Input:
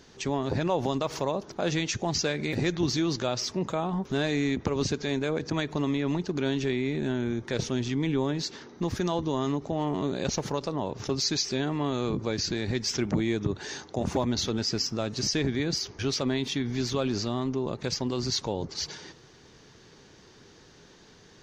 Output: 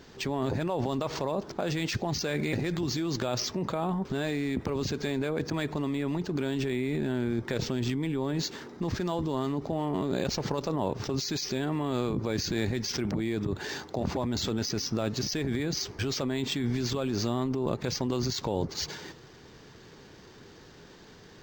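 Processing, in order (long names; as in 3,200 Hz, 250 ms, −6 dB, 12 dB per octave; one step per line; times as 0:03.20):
in parallel at +3 dB: compressor whose output falls as the input rises −31 dBFS, ratio −0.5
on the sum: linearly interpolated sample-rate reduction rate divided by 4×
level −6.5 dB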